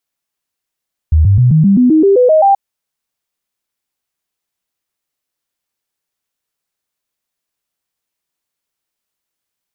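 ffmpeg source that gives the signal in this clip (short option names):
-f lavfi -i "aevalsrc='0.562*clip(min(mod(t,0.13),0.13-mod(t,0.13))/0.005,0,1)*sin(2*PI*78.4*pow(2,floor(t/0.13)/3)*mod(t,0.13))':d=1.43:s=44100"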